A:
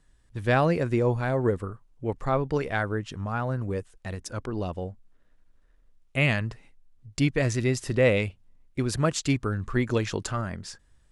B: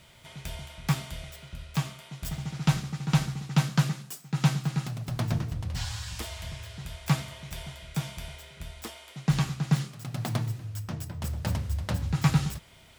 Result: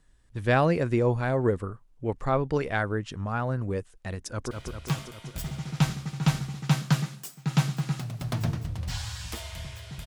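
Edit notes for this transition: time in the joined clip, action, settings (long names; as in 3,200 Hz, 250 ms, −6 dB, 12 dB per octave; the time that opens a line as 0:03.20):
A
0:04.18–0:04.51: delay throw 200 ms, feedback 70%, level −5 dB
0:04.51: continue with B from 0:01.38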